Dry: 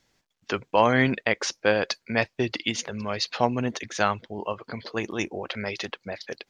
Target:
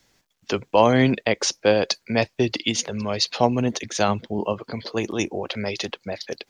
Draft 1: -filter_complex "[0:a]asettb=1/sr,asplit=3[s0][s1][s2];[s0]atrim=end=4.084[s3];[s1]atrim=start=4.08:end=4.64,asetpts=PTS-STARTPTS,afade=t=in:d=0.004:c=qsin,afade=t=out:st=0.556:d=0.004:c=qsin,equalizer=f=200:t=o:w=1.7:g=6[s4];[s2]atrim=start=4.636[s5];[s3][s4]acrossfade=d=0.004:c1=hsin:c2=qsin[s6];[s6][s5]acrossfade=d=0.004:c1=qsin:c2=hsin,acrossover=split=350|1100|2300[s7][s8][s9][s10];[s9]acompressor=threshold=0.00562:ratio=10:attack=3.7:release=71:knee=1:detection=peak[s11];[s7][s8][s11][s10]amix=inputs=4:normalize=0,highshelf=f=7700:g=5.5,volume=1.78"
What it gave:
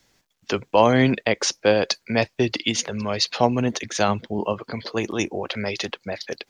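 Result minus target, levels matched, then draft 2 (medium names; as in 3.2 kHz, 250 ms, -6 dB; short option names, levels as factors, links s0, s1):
compression: peak gain reduction -10.5 dB
-filter_complex "[0:a]asettb=1/sr,asplit=3[s0][s1][s2];[s0]atrim=end=4.084[s3];[s1]atrim=start=4.08:end=4.64,asetpts=PTS-STARTPTS,afade=t=in:d=0.004:c=qsin,afade=t=out:st=0.556:d=0.004:c=qsin,equalizer=f=200:t=o:w=1.7:g=6[s4];[s2]atrim=start=4.636[s5];[s3][s4]acrossfade=d=0.004:c1=hsin:c2=qsin[s6];[s6][s5]acrossfade=d=0.004:c1=qsin:c2=hsin,acrossover=split=350|1100|2300[s7][s8][s9][s10];[s9]acompressor=threshold=0.0015:ratio=10:attack=3.7:release=71:knee=1:detection=peak[s11];[s7][s8][s11][s10]amix=inputs=4:normalize=0,highshelf=f=7700:g=5.5,volume=1.78"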